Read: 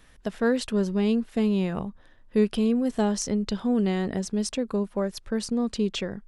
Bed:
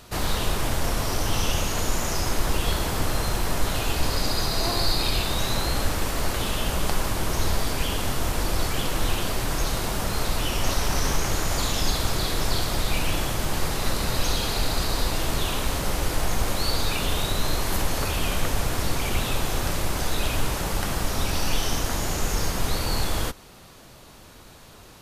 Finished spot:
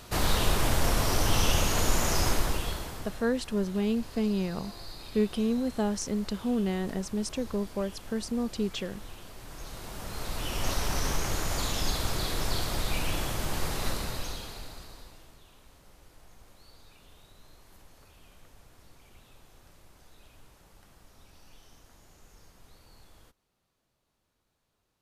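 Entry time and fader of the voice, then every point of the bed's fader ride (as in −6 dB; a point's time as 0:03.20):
2.80 s, −4.5 dB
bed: 0:02.28 −0.5 dB
0:03.28 −20.5 dB
0:09.34 −20.5 dB
0:10.66 −5.5 dB
0:13.88 −5.5 dB
0:15.41 −31 dB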